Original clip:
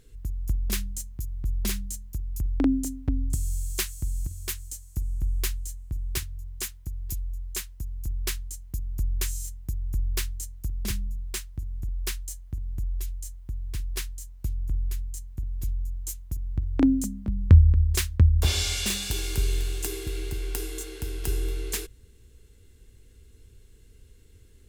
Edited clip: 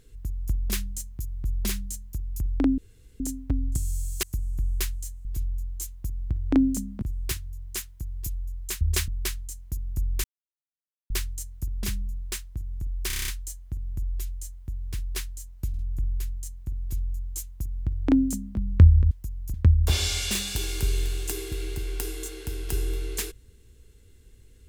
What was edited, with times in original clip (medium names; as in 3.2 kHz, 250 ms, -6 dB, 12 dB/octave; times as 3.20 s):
2.78 s: insert room tone 0.42 s
3.81–4.86 s: delete
7.67–8.10 s: swap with 17.82–18.09 s
9.26–10.12 s: mute
12.09 s: stutter 0.03 s, 8 plays
14.50 s: stutter 0.05 s, 3 plays
15.52–17.29 s: copy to 5.88 s